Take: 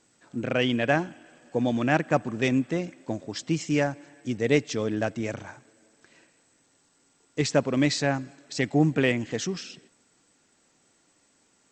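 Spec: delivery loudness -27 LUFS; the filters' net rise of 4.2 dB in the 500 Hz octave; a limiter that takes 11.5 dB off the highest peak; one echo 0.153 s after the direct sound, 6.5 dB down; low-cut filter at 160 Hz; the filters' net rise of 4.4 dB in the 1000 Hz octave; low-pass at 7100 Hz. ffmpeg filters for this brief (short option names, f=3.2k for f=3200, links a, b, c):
-af "highpass=160,lowpass=7.1k,equalizer=f=500:t=o:g=4,equalizer=f=1k:t=o:g=4.5,alimiter=limit=-16dB:level=0:latency=1,aecho=1:1:153:0.473,volume=1dB"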